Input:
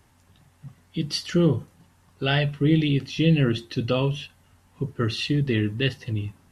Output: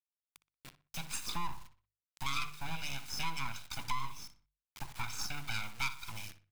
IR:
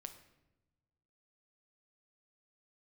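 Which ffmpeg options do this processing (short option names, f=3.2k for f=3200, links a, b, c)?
-filter_complex "[0:a]asplit=3[a][b][c];[a]bandpass=f=530:t=q:w=8,volume=0dB[d];[b]bandpass=f=1.84k:t=q:w=8,volume=-6dB[e];[c]bandpass=f=2.48k:t=q:w=8,volume=-9dB[f];[d][e][f]amix=inputs=3:normalize=0,bandreject=f=3.2k:w=11,acrossover=split=160[g][h];[h]aeval=exprs='abs(val(0))':c=same[i];[g][i]amix=inputs=2:normalize=0,aecho=1:1:0.8:0.55,asplit=2[j][k];[1:a]atrim=start_sample=2205,asetrate=83790,aresample=44100[l];[k][l]afir=irnorm=-1:irlink=0,volume=-10.5dB[m];[j][m]amix=inputs=2:normalize=0,acrusher=bits=7:dc=4:mix=0:aa=0.000001,bandreject=f=50:t=h:w=6,bandreject=f=100:t=h:w=6,bandreject=f=150:t=h:w=6,asplit=2[n][o];[o]adelay=61,lowpass=f=3.4k:p=1,volume=-13dB,asplit=2[p][q];[q]adelay=61,lowpass=f=3.4k:p=1,volume=0.3,asplit=2[r][s];[s]adelay=61,lowpass=f=3.4k:p=1,volume=0.3[t];[n][p][r][t]amix=inputs=4:normalize=0,acompressor=threshold=-48dB:ratio=2.5,tiltshelf=f=1.4k:g=-5.5,volume=13dB"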